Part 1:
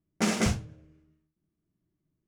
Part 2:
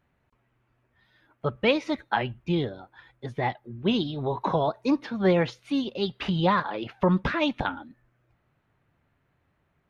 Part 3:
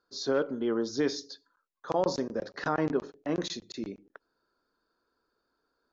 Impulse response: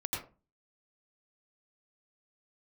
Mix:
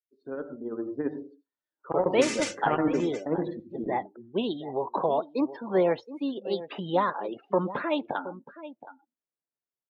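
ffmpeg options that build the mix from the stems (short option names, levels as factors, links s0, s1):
-filter_complex "[0:a]highpass=1500,aecho=1:1:3.4:0.66,adelay=2000,volume=0.266,asplit=3[s0][s1][s2];[s1]volume=0.0668[s3];[s2]volume=0.299[s4];[1:a]highpass=460,equalizer=f=2500:w=0.33:g=-14,adelay=500,volume=0.708,asplit=2[s5][s6];[s6]volume=0.2[s7];[2:a]tremolo=f=15:d=0.49,adynamicsmooth=sensitivity=1:basefreq=1400,flanger=delay=2:depth=2.1:regen=79:speed=1.5:shape=triangular,volume=0.668,asplit=2[s8][s9];[s9]volume=0.376[s10];[3:a]atrim=start_sample=2205[s11];[s3][s10]amix=inputs=2:normalize=0[s12];[s12][s11]afir=irnorm=-1:irlink=0[s13];[s4][s7]amix=inputs=2:normalize=0,aecho=0:1:721:1[s14];[s0][s5][s8][s13][s14]amix=inputs=5:normalize=0,afftdn=nr=28:nf=-52,dynaudnorm=f=190:g=13:m=3.16"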